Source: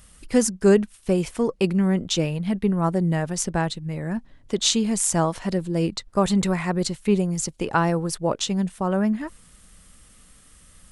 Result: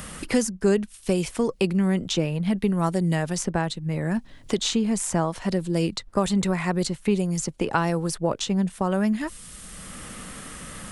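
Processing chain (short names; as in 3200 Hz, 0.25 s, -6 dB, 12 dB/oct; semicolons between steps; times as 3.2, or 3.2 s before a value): three-band squash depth 70%; gain -1.5 dB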